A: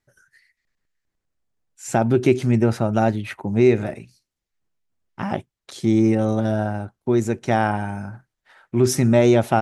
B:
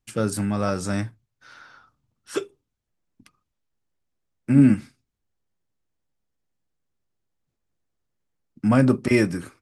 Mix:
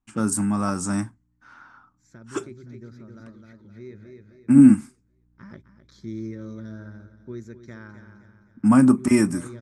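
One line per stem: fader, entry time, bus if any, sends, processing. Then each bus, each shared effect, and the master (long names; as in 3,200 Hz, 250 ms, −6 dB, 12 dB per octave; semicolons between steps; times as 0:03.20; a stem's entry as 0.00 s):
−14.5 dB, 0.20 s, no send, echo send −13.5 dB, low-pass filter 10,000 Hz; mains hum 60 Hz, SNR 23 dB; phaser with its sweep stopped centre 2,800 Hz, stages 6; automatic ducking −9 dB, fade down 1.35 s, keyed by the second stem
−1.0 dB, 0.00 s, no send, no echo send, low-pass that shuts in the quiet parts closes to 2,900 Hz, open at −19 dBFS; octave-band graphic EQ 125/250/500/1,000/2,000/4,000/8,000 Hz −5/+9/−11/+8/−4/−10/+12 dB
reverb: not used
echo: repeating echo 260 ms, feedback 41%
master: no processing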